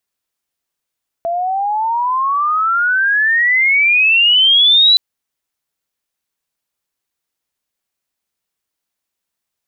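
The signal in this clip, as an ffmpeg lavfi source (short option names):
-f lavfi -i "aevalsrc='pow(10,(-6+9.5*(t/3.72-1))/20)*sin(2*PI*669*3.72/(31*log(2)/12)*(exp(31*log(2)/12*t/3.72)-1))':d=3.72:s=44100"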